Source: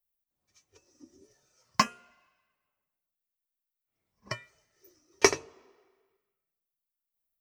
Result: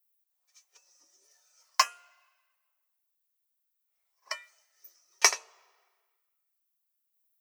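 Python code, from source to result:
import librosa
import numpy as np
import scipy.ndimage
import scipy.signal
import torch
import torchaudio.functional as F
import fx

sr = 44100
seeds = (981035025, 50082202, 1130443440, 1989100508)

y = scipy.signal.sosfilt(scipy.signal.butter(4, 670.0, 'highpass', fs=sr, output='sos'), x)
y = fx.high_shelf(y, sr, hz=6000.0, db=9.0)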